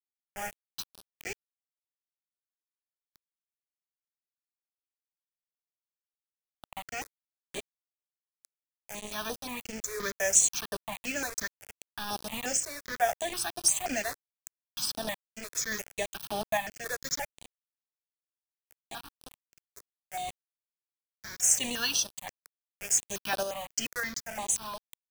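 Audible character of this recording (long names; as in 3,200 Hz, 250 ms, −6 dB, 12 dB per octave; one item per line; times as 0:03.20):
a quantiser's noise floor 6 bits, dither none
sample-and-hold tremolo
notches that jump at a steady rate 5.7 Hz 800–7,100 Hz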